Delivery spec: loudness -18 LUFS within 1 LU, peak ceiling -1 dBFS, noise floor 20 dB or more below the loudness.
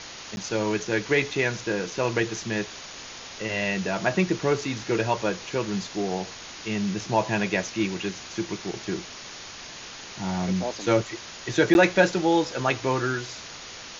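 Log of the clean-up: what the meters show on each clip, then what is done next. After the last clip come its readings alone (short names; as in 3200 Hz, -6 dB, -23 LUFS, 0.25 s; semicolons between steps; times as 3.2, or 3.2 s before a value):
dropouts 2; longest dropout 11 ms; noise floor -41 dBFS; noise floor target -46 dBFS; loudness -26.0 LUFS; peak -6.0 dBFS; loudness target -18.0 LUFS
-> interpolate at 0.36/11.74, 11 ms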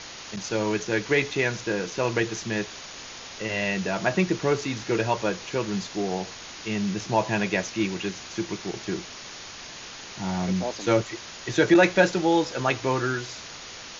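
dropouts 0; noise floor -41 dBFS; noise floor target -46 dBFS
-> denoiser 6 dB, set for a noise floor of -41 dBFS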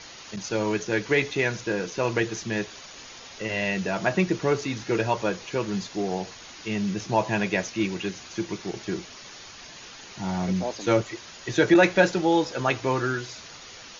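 noise floor -44 dBFS; noise floor target -46 dBFS
-> denoiser 6 dB, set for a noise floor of -44 dBFS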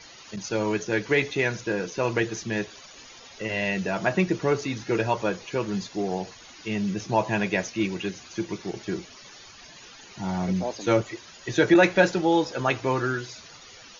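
noise floor -48 dBFS; loudness -26.0 LUFS; peak -6.0 dBFS; loudness target -18.0 LUFS
-> gain +8 dB; limiter -1 dBFS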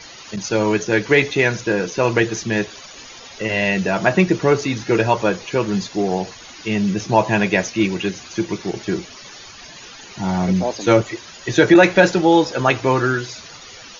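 loudness -18.5 LUFS; peak -1.0 dBFS; noise floor -40 dBFS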